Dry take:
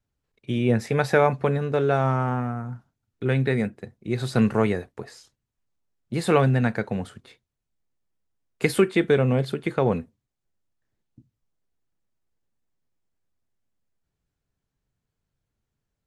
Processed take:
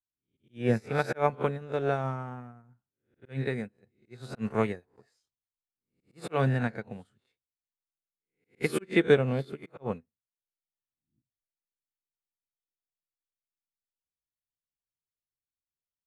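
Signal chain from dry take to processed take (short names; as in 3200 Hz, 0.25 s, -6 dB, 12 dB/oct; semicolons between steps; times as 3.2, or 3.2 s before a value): spectral swells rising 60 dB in 0.41 s; auto swell 0.13 s; upward expander 2.5:1, over -34 dBFS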